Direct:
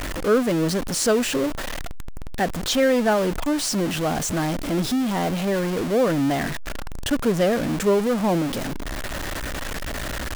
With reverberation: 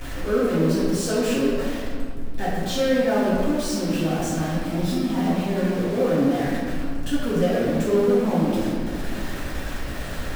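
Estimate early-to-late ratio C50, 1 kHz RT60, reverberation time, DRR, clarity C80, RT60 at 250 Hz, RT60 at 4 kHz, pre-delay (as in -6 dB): -2.0 dB, 1.7 s, 1.9 s, -10.5 dB, 0.5 dB, 2.7 s, 1.1 s, 4 ms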